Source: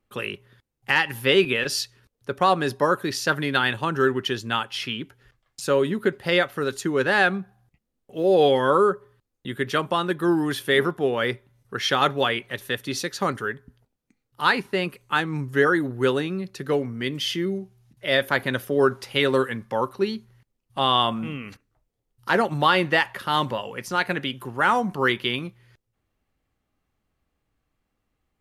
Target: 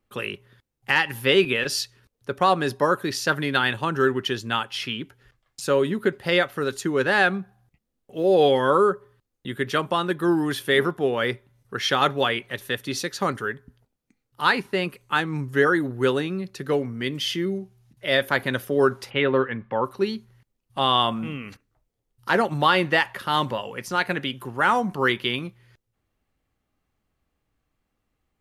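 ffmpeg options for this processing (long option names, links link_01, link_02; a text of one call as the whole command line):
ffmpeg -i in.wav -filter_complex "[0:a]asplit=3[link_01][link_02][link_03];[link_01]afade=type=out:start_time=19.09:duration=0.02[link_04];[link_02]lowpass=frequency=2900:width=0.5412,lowpass=frequency=2900:width=1.3066,afade=type=in:start_time=19.09:duration=0.02,afade=type=out:start_time=19.84:duration=0.02[link_05];[link_03]afade=type=in:start_time=19.84:duration=0.02[link_06];[link_04][link_05][link_06]amix=inputs=3:normalize=0" out.wav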